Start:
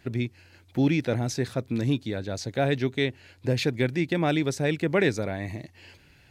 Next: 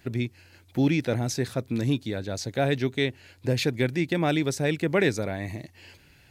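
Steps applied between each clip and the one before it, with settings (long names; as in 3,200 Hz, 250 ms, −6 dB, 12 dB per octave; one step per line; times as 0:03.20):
high-shelf EQ 8,500 Hz +7.5 dB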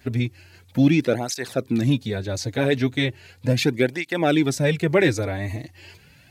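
through-zero flanger with one copy inverted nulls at 0.37 Hz, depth 6.1 ms
level +7 dB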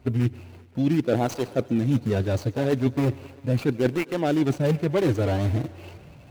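running median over 25 samples
reversed playback
downward compressor 12 to 1, threshold −26 dBFS, peak gain reduction 14.5 dB
reversed playback
feedback echo with a high-pass in the loop 131 ms, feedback 77%, high-pass 200 Hz, level −21 dB
level +7.5 dB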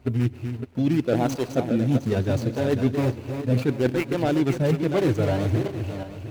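feedback delay that plays each chunk backwards 355 ms, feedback 46%, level −7.5 dB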